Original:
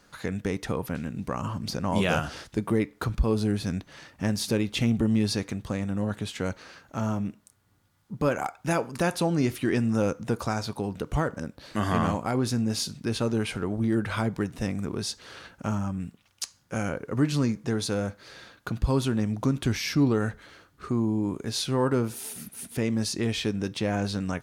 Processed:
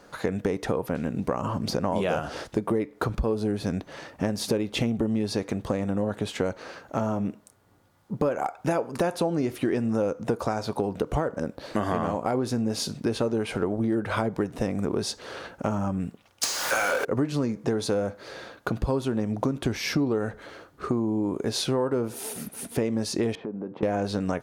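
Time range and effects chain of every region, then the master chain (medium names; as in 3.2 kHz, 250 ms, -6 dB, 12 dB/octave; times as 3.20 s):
16.43–17.05 s: high-pass 1.2 kHz + upward compressor, threshold -49 dBFS + power-law waveshaper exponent 0.35
23.35–23.83 s: Chebyshev band-pass 180–1000 Hz + compression 8:1, threshold -37 dBFS
whole clip: peaking EQ 540 Hz +11 dB 2.2 oct; compression, threshold -24 dBFS; trim +1.5 dB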